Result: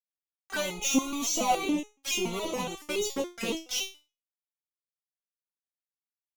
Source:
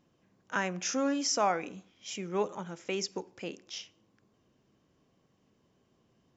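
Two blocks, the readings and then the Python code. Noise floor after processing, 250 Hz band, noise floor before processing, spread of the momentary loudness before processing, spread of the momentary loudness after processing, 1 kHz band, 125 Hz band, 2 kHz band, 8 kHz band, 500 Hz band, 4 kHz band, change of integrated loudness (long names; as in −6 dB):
below −85 dBFS, +4.5 dB, −72 dBFS, 14 LU, 7 LU, +2.0 dB, −0.5 dB, +3.0 dB, can't be measured, +1.0 dB, +6.0 dB, +3.5 dB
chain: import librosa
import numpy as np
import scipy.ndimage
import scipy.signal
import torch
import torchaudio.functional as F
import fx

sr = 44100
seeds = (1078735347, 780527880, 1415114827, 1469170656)

y = fx.fuzz(x, sr, gain_db=48.0, gate_db=-47.0)
y = fx.env_flanger(y, sr, rest_ms=4.1, full_db=-14.5)
y = fx.resonator_held(y, sr, hz=7.1, low_hz=230.0, high_hz=420.0)
y = F.gain(torch.from_numpy(y), 4.5).numpy()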